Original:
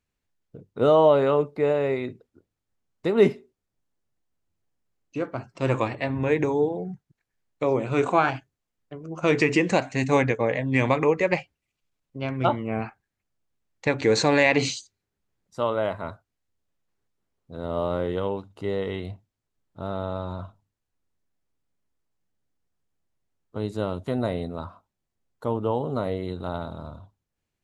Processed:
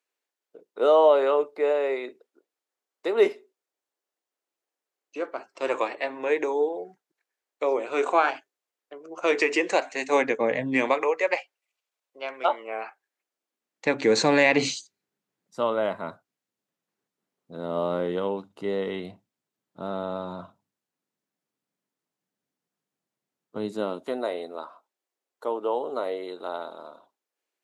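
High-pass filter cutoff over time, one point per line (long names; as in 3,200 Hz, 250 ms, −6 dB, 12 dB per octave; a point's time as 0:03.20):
high-pass filter 24 dB per octave
0:10.09 370 Hz
0:10.61 150 Hz
0:11.07 470 Hz
0:12.86 470 Hz
0:14.11 160 Hz
0:23.64 160 Hz
0:24.26 350 Hz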